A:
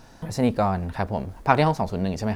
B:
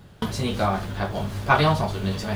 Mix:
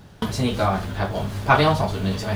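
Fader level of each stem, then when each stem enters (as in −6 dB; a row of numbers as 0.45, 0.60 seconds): −7.0, +1.5 decibels; 0.00, 0.00 seconds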